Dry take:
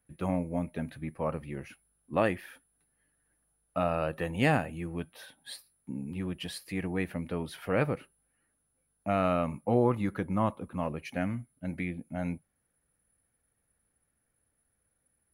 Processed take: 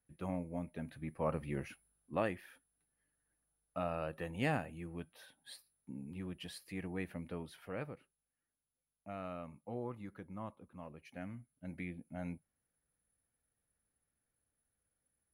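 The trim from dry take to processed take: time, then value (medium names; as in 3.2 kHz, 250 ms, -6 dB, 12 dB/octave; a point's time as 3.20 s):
0.75 s -9 dB
1.58 s 0 dB
2.28 s -9 dB
7.33 s -9 dB
7.96 s -17 dB
10.89 s -17 dB
11.83 s -9 dB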